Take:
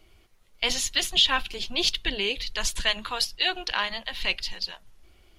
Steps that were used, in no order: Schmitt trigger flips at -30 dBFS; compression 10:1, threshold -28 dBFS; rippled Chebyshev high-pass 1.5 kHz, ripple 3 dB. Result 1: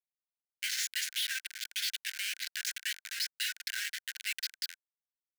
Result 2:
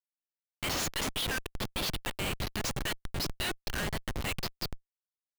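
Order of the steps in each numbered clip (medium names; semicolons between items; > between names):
Schmitt trigger > rippled Chebyshev high-pass > compression; rippled Chebyshev high-pass > Schmitt trigger > compression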